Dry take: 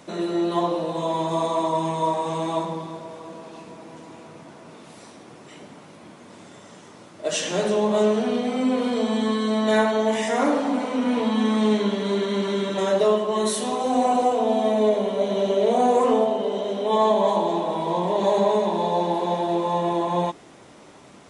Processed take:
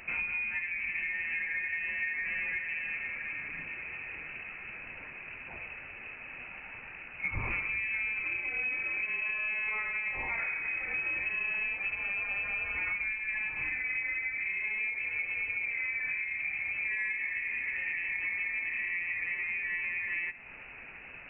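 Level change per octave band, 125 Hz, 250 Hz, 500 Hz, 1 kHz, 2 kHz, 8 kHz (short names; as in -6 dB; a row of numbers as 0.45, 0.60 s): -17.5 dB, -33.0 dB, -34.0 dB, -25.5 dB, +7.5 dB, under -40 dB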